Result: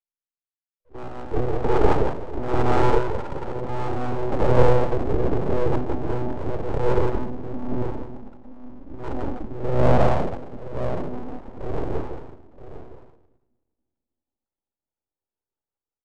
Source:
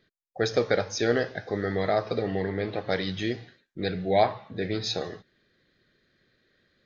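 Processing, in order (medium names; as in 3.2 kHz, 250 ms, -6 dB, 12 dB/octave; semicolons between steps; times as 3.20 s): monotone LPC vocoder at 8 kHz 290 Hz; gate -54 dBFS, range -21 dB; level rider gain up to 14 dB; transient shaper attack -7 dB, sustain +4 dB; elliptic band-pass 220–1500 Hz, stop band 40 dB; doubling 16 ms -13.5 dB; multi-tap echo 73/416 ms -3/-8.5 dB; simulated room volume 1900 m³, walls furnished, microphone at 0.89 m; full-wave rectifier; speed mistake 78 rpm record played at 33 rpm; three bands expanded up and down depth 40%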